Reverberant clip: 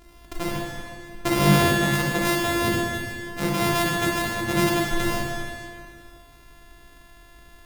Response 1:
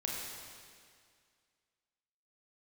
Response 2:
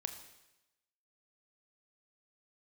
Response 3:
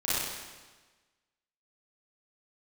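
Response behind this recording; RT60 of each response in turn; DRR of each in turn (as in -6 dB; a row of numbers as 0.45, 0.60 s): 1; 2.1, 0.95, 1.3 s; -3.5, 6.5, -11.5 dB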